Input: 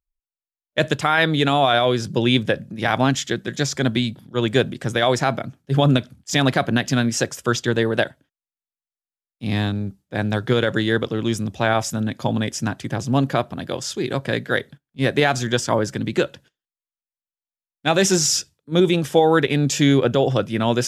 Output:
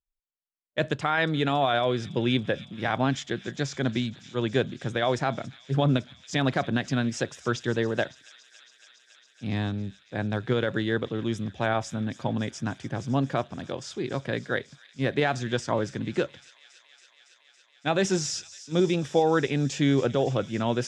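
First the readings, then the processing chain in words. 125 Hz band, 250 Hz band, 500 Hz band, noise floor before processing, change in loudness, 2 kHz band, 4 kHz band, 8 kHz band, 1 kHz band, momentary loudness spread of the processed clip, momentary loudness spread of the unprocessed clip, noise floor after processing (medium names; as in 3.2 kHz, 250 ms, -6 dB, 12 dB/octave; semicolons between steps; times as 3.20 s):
-6.5 dB, -6.5 dB, -6.5 dB, under -85 dBFS, -7.0 dB, -7.5 dB, -9.5 dB, -12.5 dB, -7.0 dB, 9 LU, 9 LU, -63 dBFS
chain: low-pass 9.2 kHz 24 dB/octave; treble shelf 4.7 kHz -9 dB; on a send: feedback echo behind a high-pass 279 ms, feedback 83%, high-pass 3 kHz, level -14.5 dB; on the sum: trim -6.5 dB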